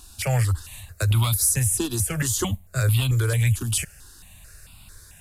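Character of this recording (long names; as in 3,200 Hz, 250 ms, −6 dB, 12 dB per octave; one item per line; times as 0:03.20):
notches that jump at a steady rate 4.5 Hz 540–1,700 Hz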